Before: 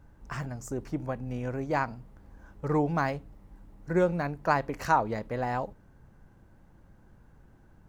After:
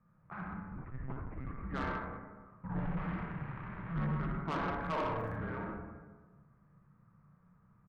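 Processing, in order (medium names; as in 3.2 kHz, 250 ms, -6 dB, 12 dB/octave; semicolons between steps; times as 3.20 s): 2.79–3.93 s: one-bit comparator; Chebyshev shaper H 7 -26 dB, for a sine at -9 dBFS; high-order bell 500 Hz -15 dB 2.5 oct; early reflections 32 ms -9.5 dB, 59 ms -7 dB; algorithmic reverb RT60 1.4 s, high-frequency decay 0.55×, pre-delay 20 ms, DRR -1 dB; mistuned SSB -330 Hz 190–2500 Hz; tilt shelf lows +5.5 dB, about 830 Hz; 0.76–1.63 s: monotone LPC vocoder at 8 kHz 130 Hz; saturation -31 dBFS, distortion -10 dB; 4.81–5.35 s: crackle 49 per s -> 170 per s -55 dBFS; trim +1 dB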